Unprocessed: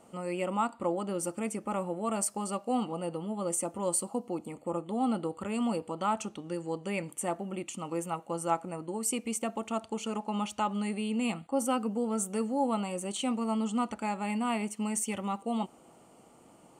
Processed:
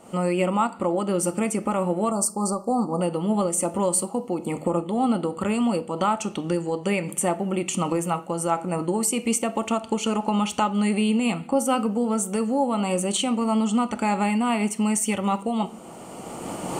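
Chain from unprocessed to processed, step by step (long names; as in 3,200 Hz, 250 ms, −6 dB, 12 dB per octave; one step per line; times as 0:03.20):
camcorder AGC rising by 16 dB per second
0:02.11–0:03.01: elliptic band-stop filter 1,200–4,600 Hz, stop band 40 dB
in parallel at −0.5 dB: downward compressor, threshold −37 dBFS, peak gain reduction 14 dB
on the sum: convolution reverb RT60 0.60 s, pre-delay 5 ms, DRR 12.5 dB
amplitude modulation by smooth noise, depth 50%
level +6.5 dB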